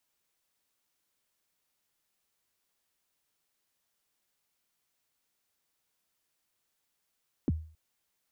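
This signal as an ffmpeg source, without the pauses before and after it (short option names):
-f lavfi -i "aevalsrc='0.0841*pow(10,-3*t/0.43)*sin(2*PI*(360*0.03/log(79/360)*(exp(log(79/360)*min(t,0.03)/0.03)-1)+79*max(t-0.03,0)))':d=0.27:s=44100"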